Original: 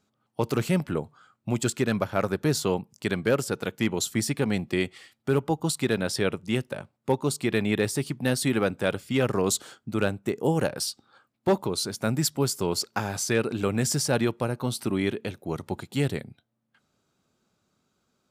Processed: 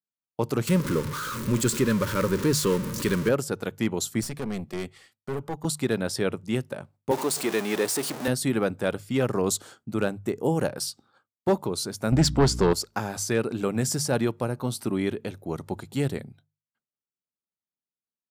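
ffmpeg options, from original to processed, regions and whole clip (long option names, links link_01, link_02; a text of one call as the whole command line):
ffmpeg -i in.wav -filter_complex "[0:a]asettb=1/sr,asplit=3[link_01][link_02][link_03];[link_01]atrim=end=0.674[link_04];[link_02]atrim=start=0.67:end=3.29,asetpts=PTS-STARTPTS,afade=type=in:duration=0.004:curve=qsin,afade=type=out:start_time=2.616:duration=0.004:curve=qsin,aeval=exprs='val(0)+0.5*0.0562*sgn(val(0))':channel_layout=same,asuperstop=centerf=730:order=8:qfactor=2.3[link_05];[link_03]atrim=start=3.286[link_06];[link_04][link_05]acrossfade=duration=0.004:curve1=hsin:curve2=qsin[link_07];[link_07][link_06]acrossfade=duration=0.004:curve1=qsin:curve2=hsin,asettb=1/sr,asplit=3[link_08][link_09][link_10];[link_08]atrim=end=4.214[link_11];[link_09]atrim=start=4.21:end=5.65,asetpts=PTS-STARTPTS,afade=type=in:duration=0.004:curve=qsin,afade=type=out:start_time=1.436:duration=0.004:curve=qsin,highpass=frequency=71:width=0.5412,highpass=frequency=71:width=1.3066,bandreject=frequency=300:width=6,aeval=exprs='(tanh(20*val(0)+0.5)-tanh(0.5))/20':channel_layout=same[link_12];[link_10]atrim=start=5.646[link_13];[link_11][link_12]acrossfade=duration=0.004:curve1=hsin:curve2=qsin[link_14];[link_14][link_13]acrossfade=duration=0.004:curve1=qsin:curve2=hsin,asettb=1/sr,asplit=3[link_15][link_16][link_17];[link_15]atrim=end=7.114[link_18];[link_16]atrim=start=7.11:end=8.28,asetpts=PTS-STARTPTS,afade=type=in:duration=0.004:curve=qsin,afade=type=out:start_time=1.166:duration=0.004:curve=qsin,aeval=exprs='val(0)+0.5*0.0562*sgn(val(0))':channel_layout=same,highpass=330[link_19];[link_17]atrim=start=8.276[link_20];[link_18][link_19]acrossfade=duration=0.004:curve1=hsin:curve2=qsin[link_21];[link_21][link_20]acrossfade=duration=0.004:curve1=qsin:curve2=hsin,asettb=1/sr,asplit=3[link_22][link_23][link_24];[link_22]atrim=end=12.124[link_25];[link_23]atrim=start=12.12:end=12.73,asetpts=PTS-STARTPTS,afade=type=in:duration=0.004:curve=qsin,afade=type=out:start_time=0.606:duration=0.004:curve=qsin,lowpass=4800,aeval=exprs='0.224*sin(PI/2*2*val(0)/0.224)':channel_layout=same,aeval=exprs='val(0)+0.0316*(sin(2*PI*60*n/s)+sin(2*PI*2*60*n/s)/2+sin(2*PI*3*60*n/s)/3+sin(2*PI*4*60*n/s)/4+sin(2*PI*5*60*n/s)/5)':channel_layout=same[link_26];[link_24]atrim=start=12.726[link_27];[link_25][link_26]acrossfade=duration=0.004:curve1=hsin:curve2=qsin[link_28];[link_28][link_27]acrossfade=duration=0.004:curve1=qsin:curve2=hsin,agate=range=-33dB:threshold=-51dB:ratio=3:detection=peak,equalizer=frequency=2800:width=0.87:gain=-4.5,bandreject=frequency=50:width_type=h:width=6,bandreject=frequency=100:width_type=h:width=6,bandreject=frequency=150:width_type=h:width=6" out.wav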